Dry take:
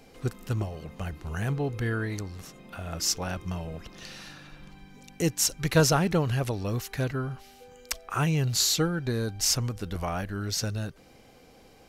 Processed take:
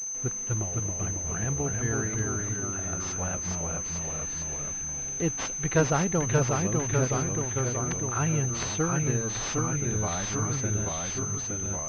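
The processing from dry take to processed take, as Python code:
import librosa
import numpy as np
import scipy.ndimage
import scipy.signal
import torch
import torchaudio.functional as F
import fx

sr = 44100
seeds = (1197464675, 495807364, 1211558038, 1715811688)

y = fx.echo_pitch(x, sr, ms=237, semitones=-1, count=3, db_per_echo=-3.0)
y = fx.quant_dither(y, sr, seeds[0], bits=8, dither='none')
y = fx.pwm(y, sr, carrier_hz=6200.0)
y = y * librosa.db_to_amplitude(-2.0)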